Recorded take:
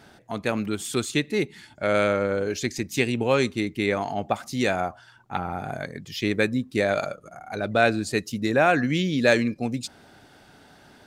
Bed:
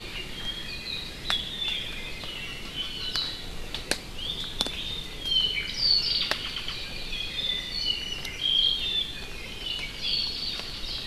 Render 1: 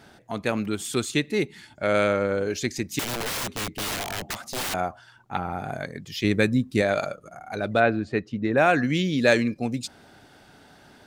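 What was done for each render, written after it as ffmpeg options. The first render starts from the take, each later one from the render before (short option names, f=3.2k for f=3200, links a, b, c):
-filter_complex "[0:a]asettb=1/sr,asplit=3[a][b][c];[a]atrim=end=2.994[d];[b]atrim=start=2.99:end=4.74,asetpts=PTS-STARTPTS,afade=t=in:d=0.004:c=qsin,afade=t=out:st=1.746:d=0.004:c=qsin,aeval=exprs='(mod(16.8*val(0)+1,2)-1)/16.8':c=same[e];[c]atrim=start=4.736[f];[d][e]acrossfade=d=0.004:c1=hsin:c2=qsin[g];[g][f]acrossfade=d=0.004:c1=qsin:c2=hsin,asettb=1/sr,asplit=3[h][i][j];[h]atrim=end=6.244[k];[i]atrim=start=6.24:end=6.82,asetpts=PTS-STARTPTS,afade=t=in:d=0.004:c=qsin,afade=t=out:st=0.576:d=0.004:c=qsin,bass=f=250:g=6,treble=f=4k:g=2[l];[j]atrim=start=6.816[m];[k][l]acrossfade=d=0.004:c1=hsin:c2=qsin[n];[n][m]acrossfade=d=0.004:c1=qsin:c2=hsin,asplit=3[o][p][q];[o]afade=t=out:st=7.79:d=0.02[r];[p]lowpass=2.1k,afade=t=in:st=7.79:d=0.02,afade=t=out:st=8.56:d=0.02[s];[q]afade=t=in:st=8.56:d=0.02[t];[r][s][t]amix=inputs=3:normalize=0"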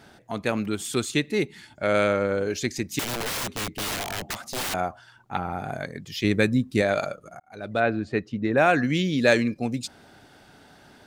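-filter_complex "[0:a]asplit=2[a][b];[a]atrim=end=7.4,asetpts=PTS-STARTPTS,afade=t=out:st=7.396:d=0.004:c=hsin[c];[b]atrim=start=7.4,asetpts=PTS-STARTPTS,afade=t=in:d=0.83:c=qsin[d];[c][d]concat=n=2:v=0:a=1"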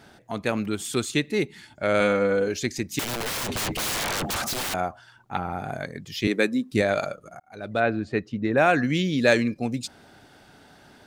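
-filter_complex "[0:a]asettb=1/sr,asplit=3[a][b][c];[a]atrim=end=2.004[d];[b]atrim=start=2:end=2.48,asetpts=PTS-STARTPTS,afade=t=in:d=0.004:c=qsin,afade=t=out:st=0.476:d=0.004:c=qsin,aecho=1:1:4.1:0.65,atrim=end_sample=21168[e];[c]atrim=start=2.476[f];[d][e]acrossfade=d=0.004:c1=hsin:c2=qsin[g];[g][f]acrossfade=d=0.004:c1=qsin:c2=hsin,asplit=3[h][i][j];[h]afade=t=out:st=3.47:d=0.02[k];[i]aeval=exprs='0.0596*sin(PI/2*5.01*val(0)/0.0596)':c=same,afade=t=in:st=3.47:d=0.02,afade=t=out:st=4.53:d=0.02[l];[j]afade=t=in:st=4.53:d=0.02[m];[k][l][m]amix=inputs=3:normalize=0,asettb=1/sr,asplit=3[n][o][p];[n]atrim=end=6.274[q];[o]atrim=start=6.27:end=6.72,asetpts=PTS-STARTPTS,afade=t=in:d=0.004:c=qsin,afade=t=out:st=0.446:d=0.004:c=qsin,highpass=f=230:w=0.5412,highpass=f=230:w=1.3066[r];[p]atrim=start=6.716[s];[q][r]acrossfade=d=0.004:c1=hsin:c2=qsin[t];[t][s]acrossfade=d=0.004:c1=qsin:c2=hsin"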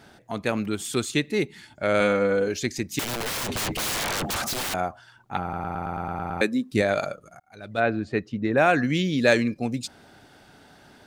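-filter_complex "[0:a]asettb=1/sr,asplit=3[a][b][c];[a]atrim=end=7.244[d];[b]atrim=start=7.24:end=7.78,asetpts=PTS-STARTPTS,afade=t=in:d=0.004:c=qsin,afade=t=out:st=0.536:d=0.004:c=qsin,equalizer=f=460:w=0.35:g=-6.5[e];[c]atrim=start=7.776[f];[d][e]acrossfade=d=0.004:c1=hsin:c2=qsin[g];[g][f]acrossfade=d=0.004:c1=qsin:c2=hsin,asplit=10[h][i][j][k][l][m][n][o][p][q];[h]atrim=end=5.532[r];[i]atrim=start=5.418:end=5.532[s];[j]atrim=start=5.418:end=5.532[t];[k]atrim=start=5.418:end=5.532[u];[l]atrim=start=5.418:end=5.532[v];[m]atrim=start=5.418:end=5.532[w];[n]atrim=start=5.418:end=5.532[x];[o]atrim=start=5.418:end=5.532[y];[p]atrim=start=5.418:end=5.532[z];[q]atrim=start=6.408[aa];[r][s]acrossfade=d=0.004:c1=hsin:c2=hsin[ab];[ab][t]acrossfade=d=0.004:c1=hsin:c2=hsin[ac];[ac][u]acrossfade=d=0.004:c1=hsin:c2=hsin[ad];[ad][v]acrossfade=d=0.004:c1=hsin:c2=hsin[ae];[ae][w]acrossfade=d=0.004:c1=hsin:c2=hsin[af];[af][x]acrossfade=d=0.004:c1=hsin:c2=hsin[ag];[ag][y]acrossfade=d=0.004:c1=hsin:c2=hsin[ah];[ah][z]acrossfade=d=0.004:c1=hsin:c2=hsin[ai];[ai][aa]acrossfade=d=0.004:c1=hsin:c2=hsin"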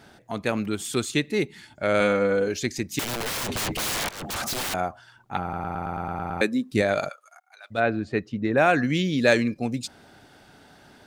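-filter_complex "[0:a]asplit=3[a][b][c];[a]afade=t=out:st=7.08:d=0.02[d];[b]highpass=f=840:w=0.5412,highpass=f=840:w=1.3066,afade=t=in:st=7.08:d=0.02,afade=t=out:st=7.7:d=0.02[e];[c]afade=t=in:st=7.7:d=0.02[f];[d][e][f]amix=inputs=3:normalize=0,asplit=2[g][h];[g]atrim=end=4.09,asetpts=PTS-STARTPTS,afade=t=out:st=4.086:d=0.004:c=hsin:silence=0.105925[i];[h]atrim=start=4.09,asetpts=PTS-STARTPTS,afade=t=in:d=0.51:c=qsin:silence=0.105925[j];[i][j]concat=n=2:v=0:a=1"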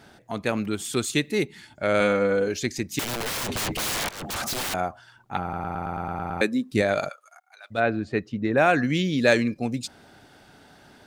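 -filter_complex "[0:a]asettb=1/sr,asplit=3[a][b][c];[a]atrim=end=1.044[d];[b]atrim=start=1.04:end=1.44,asetpts=PTS-STARTPTS,afade=t=in:d=0.004:c=qsin,afade=t=out:st=0.396:d=0.004:c=qsin,highshelf=f=7.8k:g=7.5[e];[c]atrim=start=1.436[f];[d][e]acrossfade=d=0.004:c1=hsin:c2=qsin[g];[g][f]acrossfade=d=0.004:c1=qsin:c2=hsin"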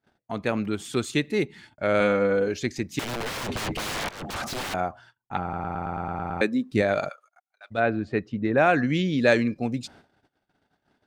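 -af "lowpass=f=3.3k:p=1,agate=range=-32dB:threshold=-49dB:ratio=16:detection=peak"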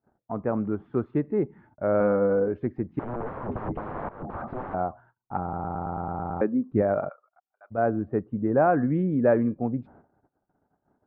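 -af "lowpass=f=1.2k:w=0.5412,lowpass=f=1.2k:w=1.3066"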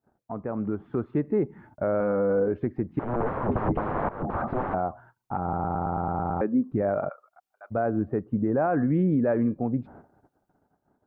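-af "alimiter=limit=-22dB:level=0:latency=1:release=220,dynaudnorm=f=130:g=11:m=6dB"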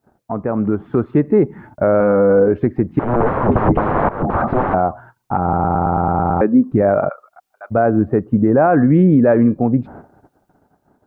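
-af "volume=11.5dB"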